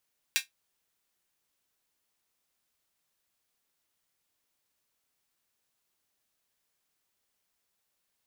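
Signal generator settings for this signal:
closed synth hi-hat, high-pass 2,200 Hz, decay 0.14 s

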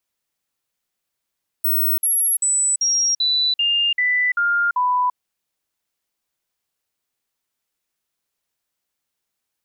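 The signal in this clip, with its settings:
stepped sweep 15,900 Hz down, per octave 2, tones 9, 0.34 s, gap 0.05 s −15.5 dBFS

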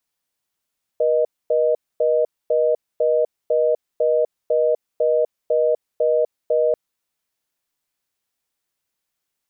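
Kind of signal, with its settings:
call progress tone reorder tone, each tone −17.5 dBFS 5.74 s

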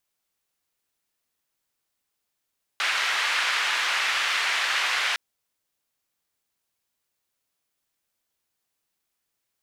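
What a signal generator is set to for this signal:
band-limited noise 1,600–2,100 Hz, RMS −25 dBFS 2.36 s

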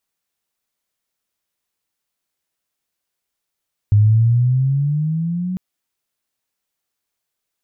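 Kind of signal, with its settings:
pitch glide with a swell sine, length 1.65 s, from 102 Hz, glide +10.5 semitones, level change −12 dB, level −8 dB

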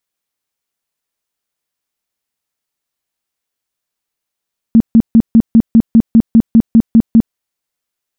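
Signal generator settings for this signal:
tone bursts 227 Hz, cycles 12, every 0.20 s, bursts 13, −2 dBFS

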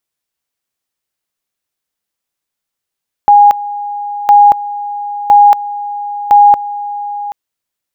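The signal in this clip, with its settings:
tone at two levels in turn 821 Hz −1.5 dBFS, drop 16 dB, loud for 0.23 s, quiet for 0.78 s, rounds 4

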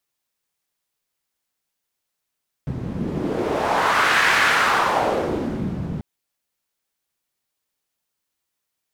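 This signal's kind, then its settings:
wind from filtered noise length 3.34 s, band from 150 Hz, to 1,700 Hz, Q 1.9, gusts 1, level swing 10 dB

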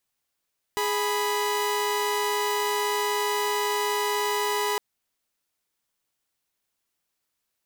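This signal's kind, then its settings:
held notes G#4/B5 saw, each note −24 dBFS 4.01 s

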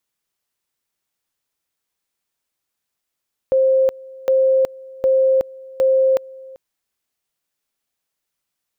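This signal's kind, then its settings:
tone at two levels in turn 528 Hz −11.5 dBFS, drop 23 dB, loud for 0.37 s, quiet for 0.39 s, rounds 4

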